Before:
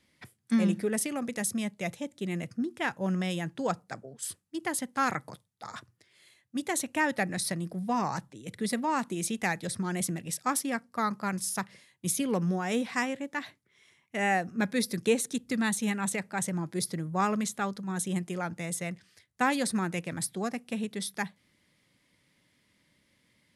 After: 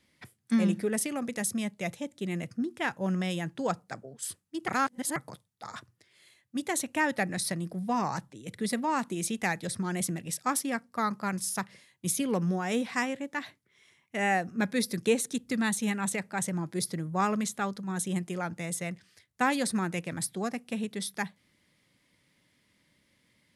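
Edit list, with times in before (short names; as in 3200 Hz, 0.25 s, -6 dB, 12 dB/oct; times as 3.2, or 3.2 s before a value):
4.68–5.16 reverse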